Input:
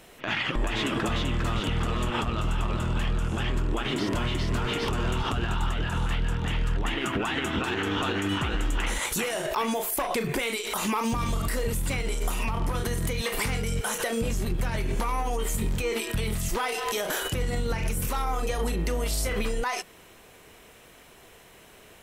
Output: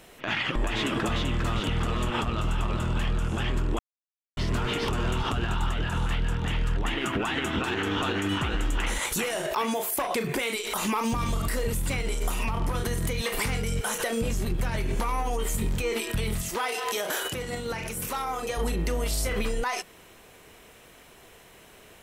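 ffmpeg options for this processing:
-filter_complex "[0:a]asettb=1/sr,asplit=3[a][b][c];[a]atrim=end=9.454[d];[b]atrim=start=9.45:end=10.55,asetpts=PTS-STARTPTS,afade=t=in:d=0.004:c=qsin,afade=t=out:st=1.096:d=0.004:c=qsin,highpass=f=87:p=1[e];[c]atrim=start=10.546[f];[d][e]acrossfade=d=0.004:c1=hsin:c2=qsin[g];[g][f]acrossfade=d=0.004:c1=qsin:c2=hsin,asettb=1/sr,asplit=3[h][i][j];[h]atrim=end=16.424[k];[i]atrim=start=16.42:end=18.57,asetpts=PTS-STARTPTS,afade=t=in:d=0.004:c=qsin,afade=t=out:st=2.146:d=0.004:c=qsin,highpass=f=240:p=1[l];[j]atrim=start=18.566[m];[k][l]acrossfade=d=0.004:c1=hsin:c2=qsin[n];[n][m]acrossfade=d=0.004:c1=qsin:c2=hsin,asplit=3[o][p][q];[o]atrim=end=3.79,asetpts=PTS-STARTPTS,afade=t=out:st=3.786:d=0.004:c=hsin[r];[p]atrim=start=3.79:end=4.37,asetpts=PTS-STARTPTS,volume=0[s];[q]atrim=start=4.37,asetpts=PTS-STARTPTS,afade=t=in:d=0.004:c=hsin[t];[r][s][t]concat=n=3:v=0:a=1"

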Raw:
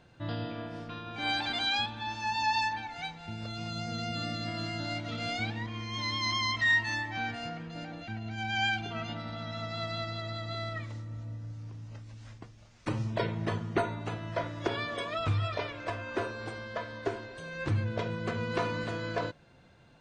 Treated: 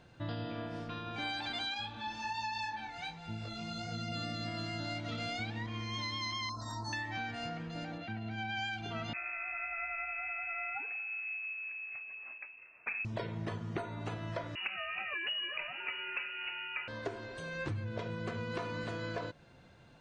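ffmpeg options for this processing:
-filter_complex "[0:a]asettb=1/sr,asplit=3[a][b][c];[a]atrim=end=1.744[d];[b]atrim=start=1.74:end=4.12,asetpts=PTS-STARTPTS,afade=t=in:d=0.004:c=qsin,afade=t=out:st=2.376:d=0.004:c=qsin,flanger=delay=18:depth=5.3:speed=1.3[e];[c]atrim=start=4.116[f];[d][e]acrossfade=d=0.004:c1=hsin:c2=qsin[g];[g][f]acrossfade=d=0.004:c1=qsin:c2=hsin,asettb=1/sr,asplit=3[h][i][j];[h]atrim=end=6.494[k];[i]atrim=start=6.49:end=6.93,asetpts=PTS-STARTPTS,afade=t=in:d=0.004:c=qsin,afade=t=out:st=0.436:d=0.004:c=qsin,asuperstop=centerf=2500:order=12:qfactor=0.9[l];[j]atrim=start=6.926[m];[k][l]acrossfade=d=0.004:c1=hsin:c2=qsin[n];[n][m]acrossfade=d=0.004:c1=qsin:c2=hsin,asplit=3[o][p][q];[o]afade=t=out:st=7.97:d=0.02[r];[p]highpass=100,lowpass=4k,afade=t=in:st=7.97:d=0.02,afade=t=out:st=8.56:d=0.02[s];[q]afade=t=in:st=8.56:d=0.02[t];[r][s][t]amix=inputs=3:normalize=0,asettb=1/sr,asplit=3[u][v][w];[u]atrim=end=9.134[x];[v]atrim=start=9.13:end=13.05,asetpts=PTS-STARTPTS,afade=t=in:d=0.004:c=qsin,afade=t=out:st=3.916:d=0.004:c=qsin,lowpass=f=2.3k:t=q:w=0.5098,lowpass=f=2.3k:t=q:w=0.6013,lowpass=f=2.3k:t=q:w=0.9,lowpass=f=2.3k:t=q:w=2.563,afreqshift=-2700[y];[w]atrim=start=13.046[z];[x][y]acrossfade=d=0.004:c1=hsin:c2=qsin[aa];[aa][z]acrossfade=d=0.004:c1=qsin:c2=hsin,asettb=1/sr,asplit=3[ab][ac][ad];[ab]atrim=end=14.554[ae];[ac]atrim=start=14.55:end=16.88,asetpts=PTS-STARTPTS,afade=t=in:d=0.004:c=qsin,afade=t=out:st=2.326:d=0.004:c=qsin,lowpass=f=2.6k:t=q:w=0.5098,lowpass=f=2.6k:t=q:w=0.6013,lowpass=f=2.6k:t=q:w=0.9,lowpass=f=2.6k:t=q:w=2.563,afreqshift=-3000[af];[ad]atrim=start=16.876[ag];[ae][af]acrossfade=d=0.004:c1=hsin:c2=qsin[ah];[ah][ag]acrossfade=d=0.004:c1=qsin:c2=hsin,acompressor=threshold=-35dB:ratio=6"

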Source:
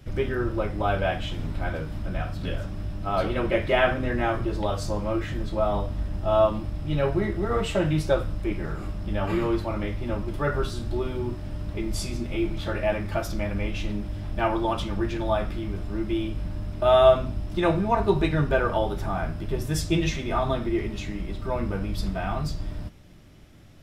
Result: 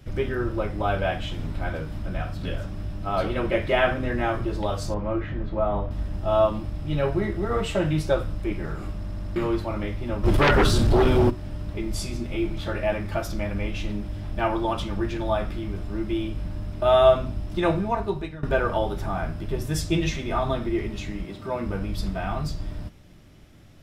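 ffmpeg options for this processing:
-filter_complex "[0:a]asettb=1/sr,asplit=3[a][b][c];[a]atrim=end=4.944[d];[b]atrim=start=4.94:end=5.91,asetpts=PTS-STARTPTS,afade=t=in:d=0.004:c=qsin,afade=t=out:st=0.966:d=0.004:c=qsin,lowpass=2.2k[e];[c]atrim=start=5.906[f];[d][e]acrossfade=d=0.004:c1=hsin:c2=qsin[g];[g][f]acrossfade=d=0.004:c1=qsin:c2=hsin,asplit=3[h][i][j];[h]afade=t=out:st=10.23:d=0.02[k];[i]aeval=exprs='0.211*sin(PI/2*3.16*val(0)/0.211)':c=same,afade=t=in:st=10.23:d=0.02,afade=t=out:st=11.29:d=0.02[l];[j]afade=t=in:st=11.29:d=0.02[m];[k][l][m]amix=inputs=3:normalize=0,asettb=1/sr,asplit=3[n][o][p];[n]atrim=end=21.244[q];[o]atrim=start=21.24:end=21.66,asetpts=PTS-STARTPTS,afade=t=in:d=0.004:c=qsin,afade=t=out:st=0.416:d=0.004:c=qsin,highpass=130[r];[p]atrim=start=21.656[s];[q][r]acrossfade=d=0.004:c1=hsin:c2=qsin[t];[t][s]acrossfade=d=0.004:c1=qsin:c2=hsin,asplit=7[u][v][w][x][y][z][aa];[u]atrim=end=9.042[ab];[v]atrim=start=8.958:end=9.042[ac];[w]atrim=start=8.958:end=9.042[ad];[x]atrim=start=8.958:end=9.042[ae];[y]atrim=start=8.958:end=9.042[af];[z]atrim=start=9.358:end=18.43,asetpts=PTS-STARTPTS,afade=t=out:st=8.362:d=0.71:silence=0.105925[ag];[aa]atrim=start=18.43,asetpts=PTS-STARTPTS,afade=t=in:d=0.004:c=hsin:silence=0.105925[ah];[ab][ac]acrossfade=d=0.004:c1=hsin:c2=hsin[ai];[ai][ad]acrossfade=d=0.004:c1=hsin:c2=hsin[aj];[aj][ae]acrossfade=d=0.004:c1=hsin:c2=hsin[ak];[ak][af]acrossfade=d=0.004:c1=hsin:c2=hsin[al];[ag][ah]concat=n=2:v=0:a=1[am];[al][am]acrossfade=d=0.004:c1=hsin:c2=hsin"

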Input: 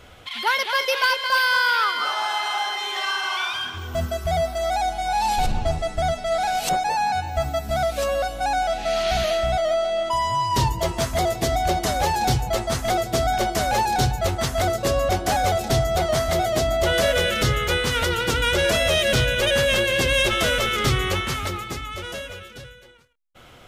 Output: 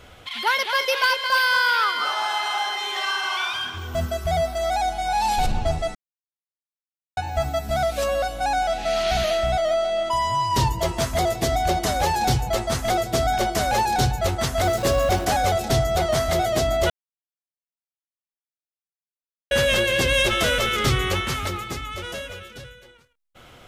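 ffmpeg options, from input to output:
-filter_complex "[0:a]asettb=1/sr,asplit=3[a][b][c];[a]atrim=end=14.654[d];[b]atrim=start=14.65:end=15.25,asetpts=PTS-STARTPTS,afade=t=in:d=0.004:c=qsin,afade=t=out:st=0.596:d=0.004:c=qsin,aeval=exprs='val(0)+0.5*0.0316*sgn(val(0))':c=same[e];[c]atrim=start=15.246[f];[d][e]acrossfade=d=0.004:c1=hsin:c2=qsin[g];[g][f]acrossfade=d=0.004:c1=qsin:c2=hsin,asplit=5[h][i][j][k][l];[h]atrim=end=5.95,asetpts=PTS-STARTPTS,afade=t=out:st=5.946:d=0.004:c=hsin[m];[i]atrim=start=5.95:end=7.17,asetpts=PTS-STARTPTS,volume=0[n];[j]atrim=start=7.17:end=16.9,asetpts=PTS-STARTPTS,afade=t=in:d=0.004:c=hsin,afade=t=out:st=9.726:d=0.004:c=hsin[o];[k]atrim=start=16.9:end=19.51,asetpts=PTS-STARTPTS,volume=0[p];[l]atrim=start=19.51,asetpts=PTS-STARTPTS,afade=t=in:d=0.004:c=hsin[q];[m][n][o][p][q]concat=n=5:v=0:a=1"

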